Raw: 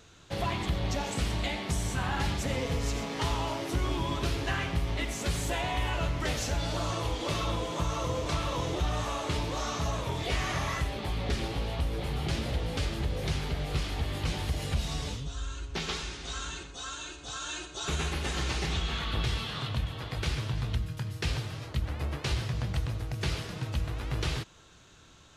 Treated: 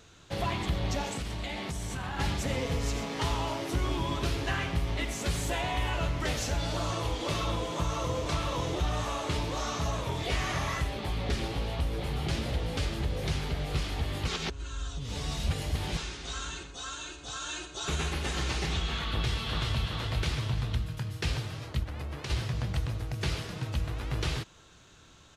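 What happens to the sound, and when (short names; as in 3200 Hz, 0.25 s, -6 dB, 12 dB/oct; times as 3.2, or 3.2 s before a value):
1.07–2.19 compressor, threshold -31 dBFS
14.28–15.97 reverse
19.08–19.84 echo throw 0.38 s, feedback 45%, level -3 dB
21.83–22.3 compressor, threshold -33 dBFS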